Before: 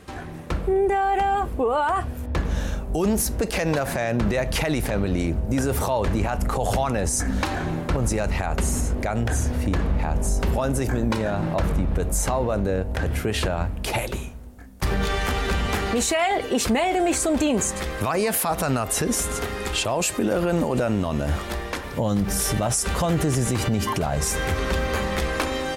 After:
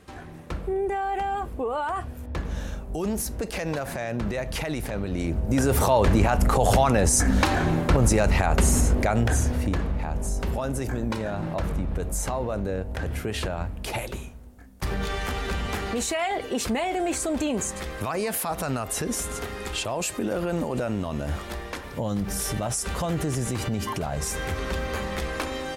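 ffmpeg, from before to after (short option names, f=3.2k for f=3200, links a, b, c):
-af "volume=3.5dB,afade=t=in:st=5.1:d=0.83:silence=0.334965,afade=t=out:st=8.92:d=1.01:silence=0.375837"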